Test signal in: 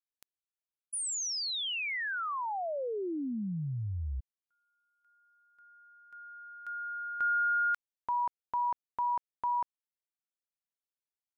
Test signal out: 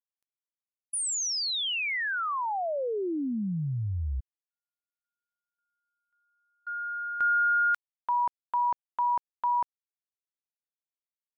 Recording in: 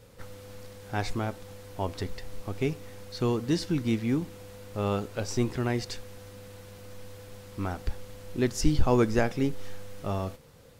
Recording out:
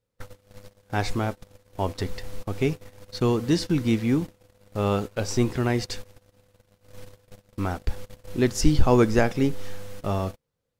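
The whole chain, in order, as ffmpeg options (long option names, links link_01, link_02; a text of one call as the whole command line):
ffmpeg -i in.wav -af "agate=range=-31dB:threshold=-40dB:ratio=3:release=27:detection=rms,volume=4.5dB" out.wav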